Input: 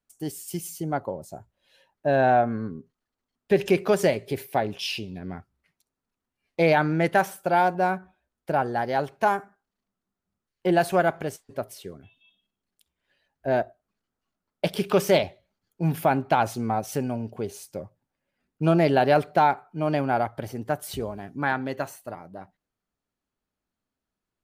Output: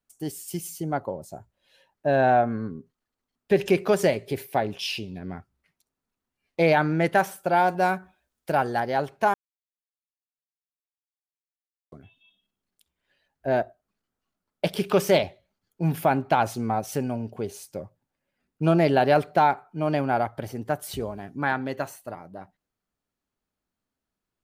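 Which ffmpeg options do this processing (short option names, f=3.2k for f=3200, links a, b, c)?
-filter_complex "[0:a]asettb=1/sr,asplit=3[a][b][c];[a]atrim=end=7.684[d];[b]atrim=start=7.68:end=8.8,asetpts=PTS-STARTPTS,afade=t=in:d=0.004:c=qsin,afade=t=out:st=1.116:d=0.004:c=qsin,highshelf=f=2.4k:g=8.5[e];[c]atrim=start=8.796[f];[d][e]acrossfade=d=0.004:c1=hsin:c2=qsin[g];[g][f]acrossfade=d=0.004:c1=qsin:c2=hsin,asplit=3[h][i][j];[h]atrim=end=9.34,asetpts=PTS-STARTPTS,afade=t=out:st=9.336:d=0.004:c=hsin[k];[i]atrim=start=9.34:end=11.92,asetpts=PTS-STARTPTS,volume=0[l];[j]atrim=start=11.92,asetpts=PTS-STARTPTS,afade=t=in:d=0.004:c=hsin[m];[k][l][m]concat=n=3:v=0:a=1"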